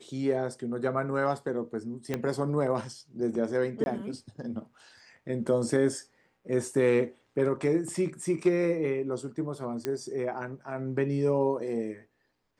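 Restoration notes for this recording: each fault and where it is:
2.14 s: pop -16 dBFS
3.84–3.86 s: dropout 21 ms
9.85 s: pop -16 dBFS

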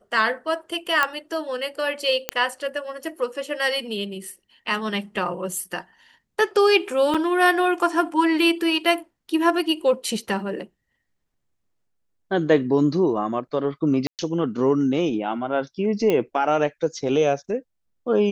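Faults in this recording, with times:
1.03 s: pop -6 dBFS
2.29 s: pop -5 dBFS
7.14–7.15 s: dropout 5.4 ms
14.07–14.19 s: dropout 118 ms
16.10 s: pop -10 dBFS

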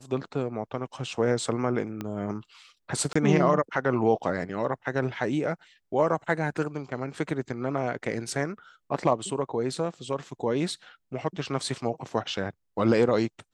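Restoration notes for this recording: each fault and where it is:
2.01 s: pop -19 dBFS
3.13–3.15 s: dropout 25 ms

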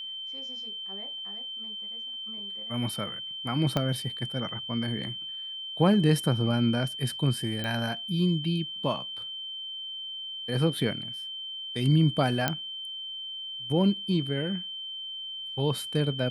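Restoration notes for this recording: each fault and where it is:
whine 3.1 kHz -35 dBFS
3.77 s: pop -13 dBFS
7.64 s: pop -19 dBFS
12.48 s: pop -9 dBFS

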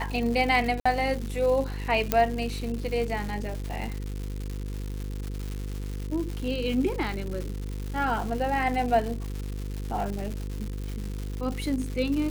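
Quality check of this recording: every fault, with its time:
buzz 50 Hz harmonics 10 -33 dBFS
crackle 280 per s -32 dBFS
0.80–0.85 s: dropout 55 ms
2.12 s: pop -6 dBFS

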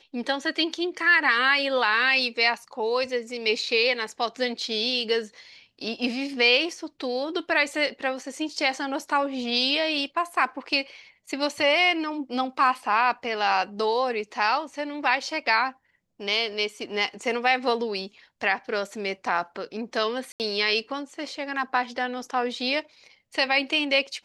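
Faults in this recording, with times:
20.32–20.40 s: dropout 78 ms

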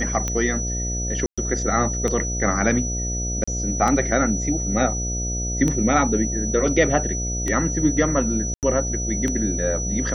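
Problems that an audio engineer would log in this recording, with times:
buzz 60 Hz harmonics 12 -27 dBFS
tick 33 1/3 rpm -11 dBFS
whine 5.9 kHz -27 dBFS
1.26–1.38 s: dropout 116 ms
3.44–3.48 s: dropout 35 ms
8.54–8.63 s: dropout 88 ms

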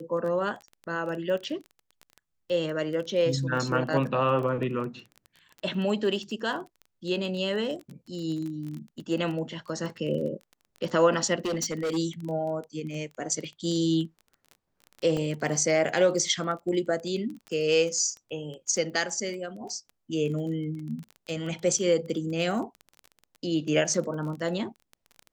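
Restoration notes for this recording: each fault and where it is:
crackle 18 per s -34 dBFS
11.38–11.98 s: clipped -25.5 dBFS
15.17 s: dropout 2.3 ms

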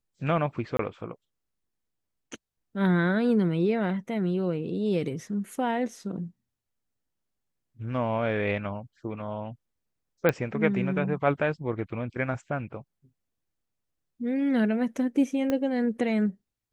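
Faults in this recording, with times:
0.77–0.79 s: dropout 23 ms
10.29 s: pop -11 dBFS
15.50 s: pop -15 dBFS

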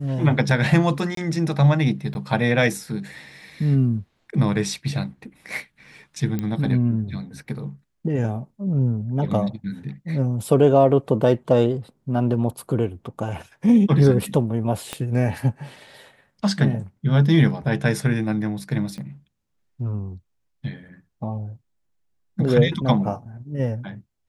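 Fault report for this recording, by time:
1.15–1.17 s: dropout 23 ms
2.14–2.15 s: dropout
6.39 s: pop -14 dBFS
14.93 s: pop -12 dBFS
18.98 s: pop -25 dBFS

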